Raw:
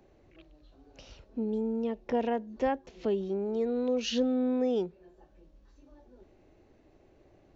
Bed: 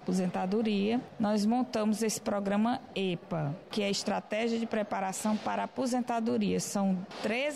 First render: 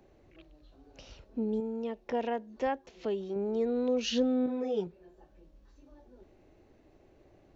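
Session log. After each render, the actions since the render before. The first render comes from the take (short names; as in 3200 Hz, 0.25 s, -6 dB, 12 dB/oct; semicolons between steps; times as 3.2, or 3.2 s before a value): 1.6–3.36 low shelf 360 Hz -7.5 dB; 4.46–4.87 ensemble effect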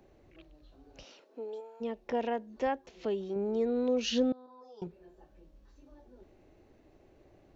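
1.03–1.8 HPF 210 Hz -> 760 Hz 24 dB/oct; 4.32–4.82 double band-pass 2200 Hz, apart 2.2 oct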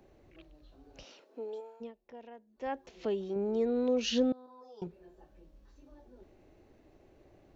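1.69–2.81 dip -17.5 dB, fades 0.24 s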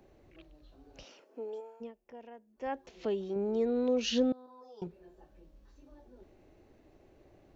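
1.08–2.73 bell 3900 Hz -10.5 dB 0.25 oct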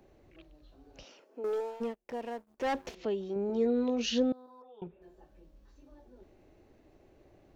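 1.44–2.95 sample leveller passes 3; 3.48–4.06 doubler 17 ms -5.5 dB; 4.62–5.02 rippled Chebyshev low-pass 3700 Hz, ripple 3 dB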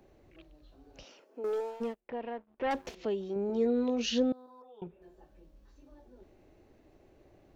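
2–2.71 LPF 3200 Hz 24 dB/oct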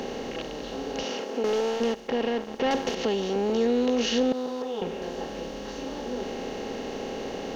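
per-bin compression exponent 0.4; in parallel at -2.5 dB: limiter -27 dBFS, peak gain reduction 10.5 dB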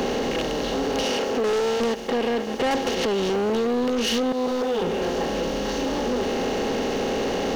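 compressor, threshold -27 dBFS, peak gain reduction 8 dB; sample leveller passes 3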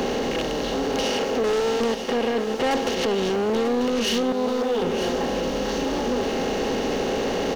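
echo 0.941 s -9.5 dB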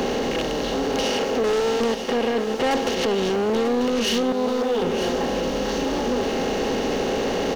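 gain +1 dB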